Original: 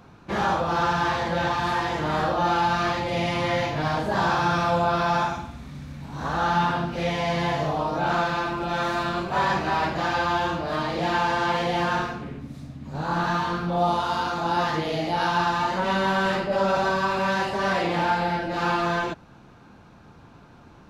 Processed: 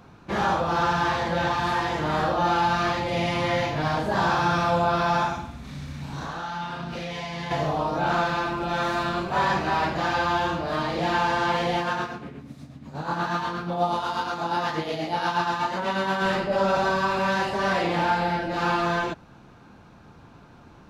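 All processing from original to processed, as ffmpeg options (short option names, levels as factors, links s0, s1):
-filter_complex "[0:a]asettb=1/sr,asplit=3[s0][s1][s2];[s0]atrim=end=5.644[s3];[s1]atrim=start=5.64:end=7.51,asetpts=PTS-STARTPTS,afade=t=in:d=0.004:c=qsin,afade=t=out:st=1.866:d=0.004:c=qsin,equalizer=f=4500:w=0.43:g=5,acompressor=threshold=0.0316:ratio=12:attack=3.2:release=140:knee=1:detection=peak,asplit=2[s4][s5];[s5]adelay=36,volume=0.631[s6];[s4][s6]amix=inputs=2:normalize=0,atrim=end_sample=82467[s7];[s2]atrim=start=7.506[s8];[s3][s7]acrossfade=d=0.004:c1=hsin:c2=qsin[s9];[s9][s8]acrossfade=d=0.004:c1=qsin:c2=hsin,asettb=1/sr,asplit=3[s10][s11][s12];[s10]atrim=end=11.784[s13];[s11]atrim=start=11.78:end=16.22,asetpts=PTS-STARTPTS,afade=t=in:d=0.004:c=qsin,afade=t=out:st=4.436:d=0.004:c=qsin,highpass=f=130:p=1,tremolo=f=8.3:d=0.46[s14];[s12]atrim=start=16.216[s15];[s13][s14]acrossfade=d=0.004:c1=hsin:c2=qsin[s16];[s16][s15]acrossfade=d=0.004:c1=qsin:c2=hsin"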